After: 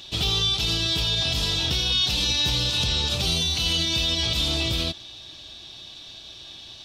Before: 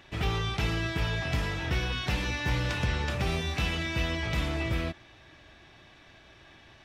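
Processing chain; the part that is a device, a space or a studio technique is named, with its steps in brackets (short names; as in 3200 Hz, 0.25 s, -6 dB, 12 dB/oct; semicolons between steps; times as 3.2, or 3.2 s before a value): over-bright horn tweeter (resonant high shelf 2700 Hz +11.5 dB, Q 3; limiter -18 dBFS, peak gain reduction 10.5 dB); 3.25–3.94 ripple EQ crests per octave 1.9, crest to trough 7 dB; gain +3.5 dB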